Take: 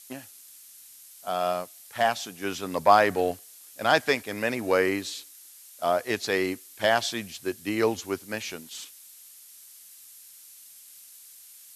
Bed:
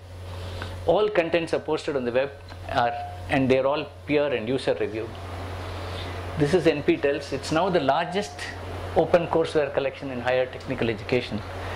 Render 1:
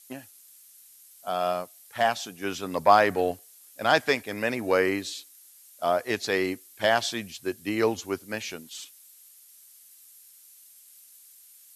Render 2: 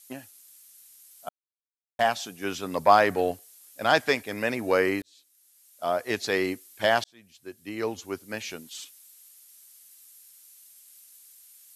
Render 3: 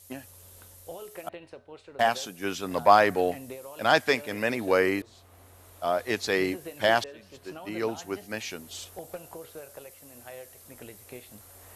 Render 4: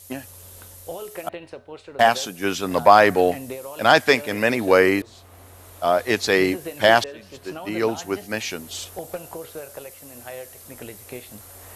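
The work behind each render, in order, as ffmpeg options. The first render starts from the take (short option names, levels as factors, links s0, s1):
-af "afftdn=nr=6:nf=-50"
-filter_complex "[0:a]asplit=5[s0][s1][s2][s3][s4];[s0]atrim=end=1.29,asetpts=PTS-STARTPTS,afade=t=out:st=1.286:d=0.004:c=hsin[s5];[s1]atrim=start=1.29:end=1.99,asetpts=PTS-STARTPTS,volume=0[s6];[s2]atrim=start=1.99:end=5.02,asetpts=PTS-STARTPTS,afade=t=in:d=0.004:c=hsin,afade=t=out:st=3.026:d=0.004:c=hsin[s7];[s3]atrim=start=5.02:end=7.04,asetpts=PTS-STARTPTS,afade=t=in:d=1.16,afade=t=out:st=2.016:d=0.004:c=hsin[s8];[s4]atrim=start=7.04,asetpts=PTS-STARTPTS,afade=t=in:d=1.59[s9];[s5][s6][s7][s8][s9]concat=n=5:v=0:a=1"
-filter_complex "[1:a]volume=0.0891[s0];[0:a][s0]amix=inputs=2:normalize=0"
-af "volume=2.37,alimiter=limit=0.891:level=0:latency=1"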